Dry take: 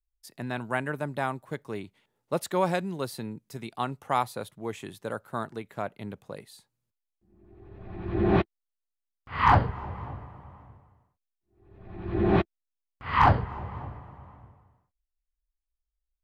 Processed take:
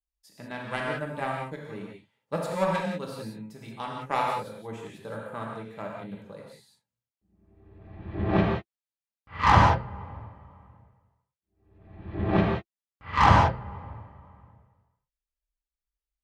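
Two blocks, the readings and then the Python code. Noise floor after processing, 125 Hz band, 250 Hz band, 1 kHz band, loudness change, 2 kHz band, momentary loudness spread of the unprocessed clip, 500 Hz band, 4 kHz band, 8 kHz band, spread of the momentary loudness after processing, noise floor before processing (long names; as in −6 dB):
below −85 dBFS, +2.0 dB, 0.0 dB, +2.0 dB, +2.5 dB, +2.0 dB, 20 LU, −0.5 dB, +3.5 dB, can't be measured, 23 LU, −85 dBFS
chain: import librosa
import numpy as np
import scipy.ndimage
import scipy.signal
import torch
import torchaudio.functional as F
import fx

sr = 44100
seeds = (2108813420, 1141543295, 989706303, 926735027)

y = fx.high_shelf(x, sr, hz=11000.0, db=-10.0)
y = fx.notch_comb(y, sr, f0_hz=360.0)
y = fx.cheby_harmonics(y, sr, harmonics=(7,), levels_db=(-22,), full_scale_db=-7.5)
y = fx.rev_gated(y, sr, seeds[0], gate_ms=210, shape='flat', drr_db=-2.0)
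y = y * librosa.db_to_amplitude(1.0)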